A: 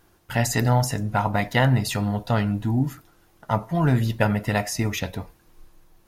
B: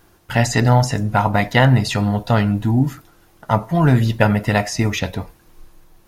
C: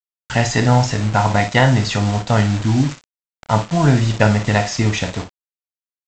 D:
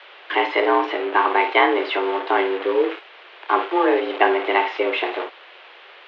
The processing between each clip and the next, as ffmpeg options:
-filter_complex "[0:a]acrossover=split=7500[s0][s1];[s1]acompressor=threshold=0.00316:ratio=4:attack=1:release=60[s2];[s0][s2]amix=inputs=2:normalize=0,volume=2"
-af "aresample=16000,acrusher=bits=4:mix=0:aa=0.000001,aresample=44100,aecho=1:1:28|56:0.282|0.282"
-af "aeval=exprs='val(0)+0.5*0.075*sgn(val(0))':c=same,highpass=f=180:t=q:w=0.5412,highpass=f=180:t=q:w=1.307,lowpass=f=3100:t=q:w=0.5176,lowpass=f=3100:t=q:w=0.7071,lowpass=f=3100:t=q:w=1.932,afreqshift=180,volume=0.841"

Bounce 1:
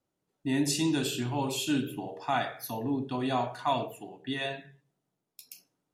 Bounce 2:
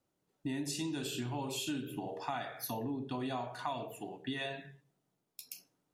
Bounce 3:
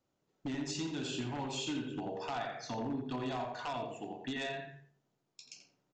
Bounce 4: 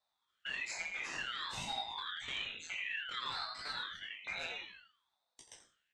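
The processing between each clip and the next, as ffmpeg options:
-af "acompressor=threshold=0.0158:ratio=6,volume=1.12"
-filter_complex "[0:a]aresample=16000,aeval=exprs='0.0266*(abs(mod(val(0)/0.0266+3,4)-2)-1)':c=same,aresample=44100,asplit=2[s0][s1];[s1]adelay=85,lowpass=f=2400:p=1,volume=0.631,asplit=2[s2][s3];[s3]adelay=85,lowpass=f=2400:p=1,volume=0.26,asplit=2[s4][s5];[s5]adelay=85,lowpass=f=2400:p=1,volume=0.26,asplit=2[s6][s7];[s7]adelay=85,lowpass=f=2400:p=1,volume=0.26[s8];[s0][s2][s4][s6][s8]amix=inputs=5:normalize=0"
-af "afftfilt=real='real(if(lt(b,920),b+92*(1-2*mod(floor(b/92),2)),b),0)':imag='imag(if(lt(b,920),b+92*(1-2*mod(floor(b/92),2)),b),0)':win_size=2048:overlap=0.75,flanger=delay=17:depth=6.9:speed=1.1,aeval=exprs='val(0)*sin(2*PI*780*n/s+780*0.9/0.56*sin(2*PI*0.56*n/s))':c=same,volume=1.33"

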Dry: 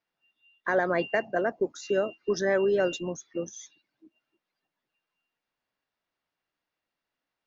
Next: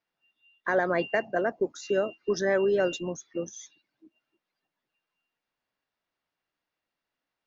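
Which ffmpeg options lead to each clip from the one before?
-af anull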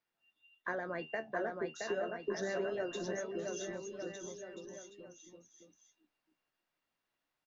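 -af "acompressor=threshold=0.0158:ratio=2.5,flanger=delay=8.1:depth=6.3:regen=54:speed=0.35:shape=triangular,aecho=1:1:670|1206|1635|1978|2252:0.631|0.398|0.251|0.158|0.1,volume=1.12"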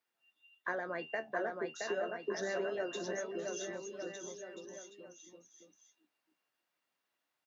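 -af "highpass=f=300:p=1,volume=1.19"

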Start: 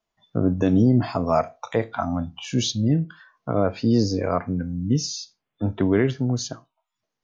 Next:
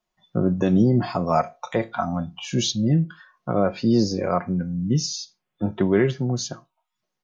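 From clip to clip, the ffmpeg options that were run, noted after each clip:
-af "aecho=1:1:5.5:0.5"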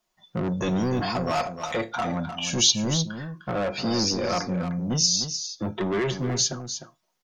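-filter_complex "[0:a]bass=f=250:g=-4,treble=f=4000:g=5,acrossover=split=2200[s0][s1];[s0]asoftclip=type=tanh:threshold=0.0473[s2];[s2][s1]amix=inputs=2:normalize=0,aecho=1:1:304:0.335,volume=1.5"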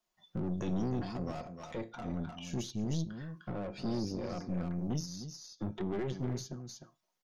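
-filter_complex "[0:a]acrossover=split=440[s0][s1];[s1]acompressor=threshold=0.00891:ratio=4[s2];[s0][s2]amix=inputs=2:normalize=0,aeval=exprs='(tanh(14.1*val(0)+0.75)-tanh(0.75))/14.1':c=same,volume=0.668"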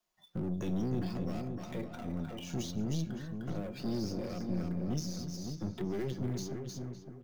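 -filter_complex "[0:a]acrossover=split=290|670|1400[s0][s1][s2][s3];[s2]acompressor=threshold=0.00112:ratio=6[s4];[s3]acrusher=bits=2:mode=log:mix=0:aa=0.000001[s5];[s0][s1][s4][s5]amix=inputs=4:normalize=0,asplit=2[s6][s7];[s7]adelay=560,lowpass=f=1600:p=1,volume=0.501,asplit=2[s8][s9];[s9]adelay=560,lowpass=f=1600:p=1,volume=0.25,asplit=2[s10][s11];[s11]adelay=560,lowpass=f=1600:p=1,volume=0.25[s12];[s6][s8][s10][s12]amix=inputs=4:normalize=0"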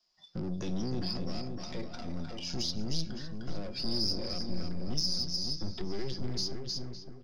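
-filter_complex "[0:a]asubboost=boost=5:cutoff=61,lowpass=f=5000:t=q:w=12,asplit=2[s0][s1];[s1]asoftclip=type=tanh:threshold=0.0316,volume=0.422[s2];[s0][s2]amix=inputs=2:normalize=0,volume=0.75"

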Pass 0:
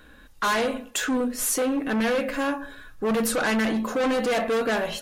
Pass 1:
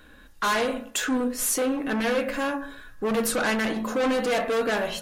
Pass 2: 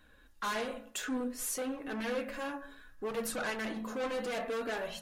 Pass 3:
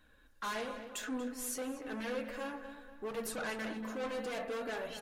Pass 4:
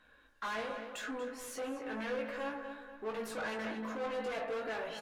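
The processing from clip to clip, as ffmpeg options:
-af "bandreject=f=55.73:t=h:w=4,bandreject=f=111.46:t=h:w=4,bandreject=f=167.19:t=h:w=4,bandreject=f=222.92:t=h:w=4,bandreject=f=278.65:t=h:w=4,bandreject=f=334.38:t=h:w=4,bandreject=f=390.11:t=h:w=4,bandreject=f=445.84:t=h:w=4,bandreject=f=501.57:t=h:w=4,bandreject=f=557.3:t=h:w=4,bandreject=f=613.03:t=h:w=4,bandreject=f=668.76:t=h:w=4,bandreject=f=724.49:t=h:w=4,bandreject=f=780.22:t=h:w=4,bandreject=f=835.95:t=h:w=4,bandreject=f=891.68:t=h:w=4,bandreject=f=947.41:t=h:w=4,bandreject=f=1003.14:t=h:w=4,bandreject=f=1058.87:t=h:w=4,bandreject=f=1114.6:t=h:w=4,bandreject=f=1170.33:t=h:w=4,bandreject=f=1226.06:t=h:w=4,bandreject=f=1281.79:t=h:w=4,bandreject=f=1337.52:t=h:w=4,bandreject=f=1393.25:t=h:w=4,bandreject=f=1448.98:t=h:w=4,bandreject=f=1504.71:t=h:w=4,bandreject=f=1560.44:t=h:w=4,bandreject=f=1616.17:t=h:w=4,bandreject=f=1671.9:t=h:w=4,bandreject=f=1727.63:t=h:w=4,bandreject=f=1783.36:t=h:w=4,bandreject=f=1839.09:t=h:w=4,bandreject=f=1894.82:t=h:w=4,bandreject=f=1950.55:t=h:w=4,bandreject=f=2006.28:t=h:w=4"
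-af "flanger=delay=1:depth=5.2:regen=-45:speed=0.6:shape=triangular,volume=0.447"
-filter_complex "[0:a]asplit=2[s0][s1];[s1]adelay=236,lowpass=f=3200:p=1,volume=0.316,asplit=2[s2][s3];[s3]adelay=236,lowpass=f=3200:p=1,volume=0.44,asplit=2[s4][s5];[s5]adelay=236,lowpass=f=3200:p=1,volume=0.44,asplit=2[s6][s7];[s7]adelay=236,lowpass=f=3200:p=1,volume=0.44,asplit=2[s8][s9];[s9]adelay=236,lowpass=f=3200:p=1,volume=0.44[s10];[s0][s2][s4][s6][s8][s10]amix=inputs=6:normalize=0,volume=0.668"
-filter_complex "[0:a]asplit=2[s0][s1];[s1]highpass=f=720:p=1,volume=5.01,asoftclip=type=tanh:threshold=0.0447[s2];[s0][s2]amix=inputs=2:normalize=0,lowpass=f=2000:p=1,volume=0.501,asplit=2[s3][s4];[s4]adelay=18,volume=0.631[s5];[s3][s5]amix=inputs=2:normalize=0,volume=0.708"

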